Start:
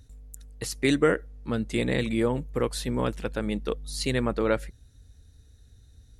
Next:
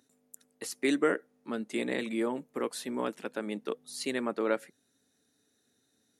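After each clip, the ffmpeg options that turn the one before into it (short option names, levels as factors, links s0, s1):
-af "highpass=f=230:w=0.5412,highpass=f=230:w=1.3066,equalizer=f=4200:w=0.98:g=-3.5,bandreject=f=490:w=12,volume=0.668"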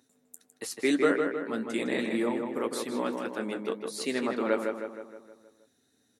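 -filter_complex "[0:a]flanger=delay=7.8:depth=4.9:regen=-47:speed=1.8:shape=sinusoidal,asplit=2[s0][s1];[s1]adelay=157,lowpass=f=3100:p=1,volume=0.596,asplit=2[s2][s3];[s3]adelay=157,lowpass=f=3100:p=1,volume=0.55,asplit=2[s4][s5];[s5]adelay=157,lowpass=f=3100:p=1,volume=0.55,asplit=2[s6][s7];[s7]adelay=157,lowpass=f=3100:p=1,volume=0.55,asplit=2[s8][s9];[s9]adelay=157,lowpass=f=3100:p=1,volume=0.55,asplit=2[s10][s11];[s11]adelay=157,lowpass=f=3100:p=1,volume=0.55,asplit=2[s12][s13];[s13]adelay=157,lowpass=f=3100:p=1,volume=0.55[s14];[s2][s4][s6][s8][s10][s12][s14]amix=inputs=7:normalize=0[s15];[s0][s15]amix=inputs=2:normalize=0,volume=1.88"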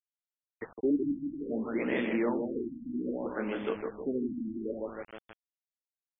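-af "aresample=11025,acrusher=bits=6:mix=0:aa=0.000001,aresample=44100,asoftclip=type=tanh:threshold=0.133,afftfilt=real='re*lt(b*sr/1024,300*pow(3600/300,0.5+0.5*sin(2*PI*0.62*pts/sr)))':imag='im*lt(b*sr/1024,300*pow(3600/300,0.5+0.5*sin(2*PI*0.62*pts/sr)))':win_size=1024:overlap=0.75"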